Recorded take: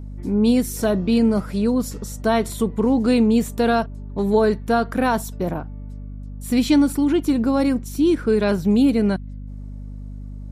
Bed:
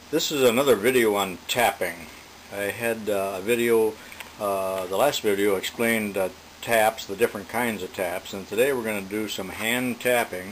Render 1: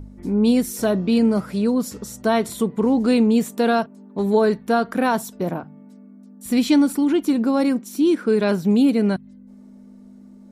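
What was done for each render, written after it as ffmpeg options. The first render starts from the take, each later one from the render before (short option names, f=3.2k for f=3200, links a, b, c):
-af "bandreject=f=50:t=h:w=4,bandreject=f=100:t=h:w=4,bandreject=f=150:t=h:w=4"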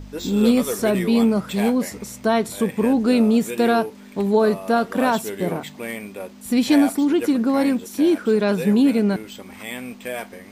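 -filter_complex "[1:a]volume=-8dB[a];[0:a][a]amix=inputs=2:normalize=0"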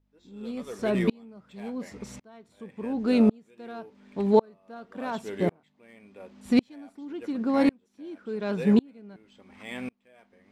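-af "adynamicsmooth=sensitivity=1.5:basefreq=4.9k,aeval=exprs='val(0)*pow(10,-36*if(lt(mod(-0.91*n/s,1),2*abs(-0.91)/1000),1-mod(-0.91*n/s,1)/(2*abs(-0.91)/1000),(mod(-0.91*n/s,1)-2*abs(-0.91)/1000)/(1-2*abs(-0.91)/1000))/20)':c=same"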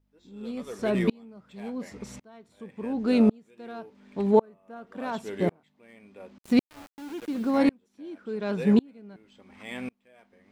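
-filter_complex "[0:a]asettb=1/sr,asplit=3[a][b][c];[a]atrim=end=4.314[d];[b]atrim=start=4.31:end=4.87,asetpts=PTS-STARTPTS,afade=t=in:d=0.004:c=qsin,afade=t=out:st=0.556:d=0.004:c=qsin,equalizer=f=4.3k:t=o:w=0.56:g=-10.5[e];[c]atrim=start=4.866[f];[d][e]acrossfade=d=0.004:c1=hsin:c2=qsin[g];[g][f]acrossfade=d=0.004:c1=qsin:c2=hsin,asettb=1/sr,asplit=3[h][i][j];[h]atrim=end=6.384[k];[i]atrim=start=6.38:end=7.58,asetpts=PTS-STARTPTS,afade=t=in:d=0.004:c=qsin,afade=t=out:st=1.196:d=0.004:c=qsin,aeval=exprs='val(0)*gte(abs(val(0)),0.00944)':c=same[l];[j]atrim=start=7.576[m];[k][l]acrossfade=d=0.004:c1=hsin:c2=qsin[n];[n][m]acrossfade=d=0.004:c1=qsin:c2=hsin"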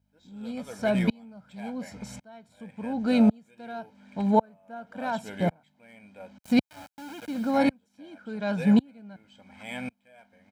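-af "highpass=73,aecho=1:1:1.3:0.75"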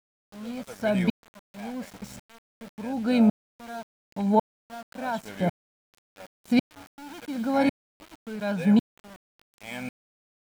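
-af "aeval=exprs='val(0)*gte(abs(val(0)),0.00891)':c=same"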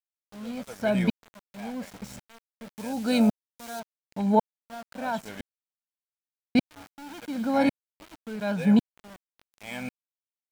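-filter_complex "[0:a]asettb=1/sr,asplit=3[a][b][c];[a]atrim=end=2.754[d];[b]atrim=start=2.75:end=3.8,asetpts=PTS-STARTPTS,afade=t=in:d=0.004:c=qsin,afade=t=out:st=1.046:d=0.004:c=qsin,bass=f=250:g=-3,treble=f=4k:g=11[e];[c]atrim=start=3.796[f];[d][e]acrossfade=d=0.004:c1=hsin:c2=qsin[g];[g][f]acrossfade=d=0.004:c1=qsin:c2=hsin,asplit=3[h][i][j];[h]atrim=end=5.41,asetpts=PTS-STARTPTS,afade=t=out:st=5.406:d=0.004:c=hsin[k];[i]atrim=start=5.41:end=6.55,asetpts=PTS-STARTPTS,volume=0[l];[j]atrim=start=6.55,asetpts=PTS-STARTPTS,afade=t=in:d=0.004:c=hsin[m];[k][l][m]concat=n=3:v=0:a=1"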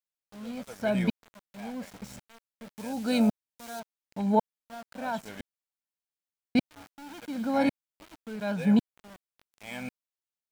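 -af "volume=-2.5dB"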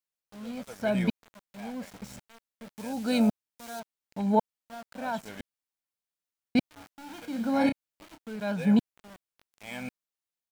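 -filter_complex "[0:a]asplit=3[a][b][c];[a]afade=t=out:st=6.91:d=0.02[d];[b]asplit=2[e][f];[f]adelay=30,volume=-7dB[g];[e][g]amix=inputs=2:normalize=0,afade=t=in:st=6.91:d=0.02,afade=t=out:st=8.17:d=0.02[h];[c]afade=t=in:st=8.17:d=0.02[i];[d][h][i]amix=inputs=3:normalize=0"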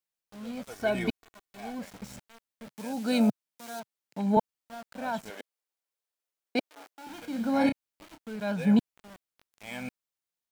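-filter_complex "[0:a]asettb=1/sr,asplit=3[a][b][c];[a]atrim=end=0.704[d];[b]atrim=start=0.7:end=1.79,asetpts=PTS-STARTPTS,afade=t=in:d=0.004:c=qsin,afade=t=out:st=1.086:d=0.004:c=qsin,aecho=1:1:2.7:0.6,atrim=end_sample=48069[e];[c]atrim=start=1.786[f];[d][e]acrossfade=d=0.004:c1=hsin:c2=qsin[g];[g][f]acrossfade=d=0.004:c1=qsin:c2=hsin,asettb=1/sr,asplit=3[h][i][j];[h]atrim=end=2.674[k];[i]atrim=start=2.67:end=4.37,asetpts=PTS-STARTPTS,afade=t=in:d=0.004:c=qsin,afade=t=out:st=1.696:d=0.004:c=qsin,highpass=f=130:w=0.5412,highpass=f=130:w=1.3066[l];[j]atrim=start=4.366[m];[k][l]acrossfade=d=0.004:c1=hsin:c2=qsin[n];[n][m]acrossfade=d=0.004:c1=qsin:c2=hsin,asettb=1/sr,asplit=3[o][p][q];[o]atrim=end=5.304[r];[p]atrim=start=5.3:end=7.07,asetpts=PTS-STARTPTS,afade=t=in:d=0.004:c=qsin,afade=t=out:st=1.766:d=0.004:c=qsin,highpass=f=440:t=q:w=1.6[s];[q]atrim=start=7.066[t];[r][s]acrossfade=d=0.004:c1=hsin:c2=qsin[u];[u][t]acrossfade=d=0.004:c1=qsin:c2=hsin"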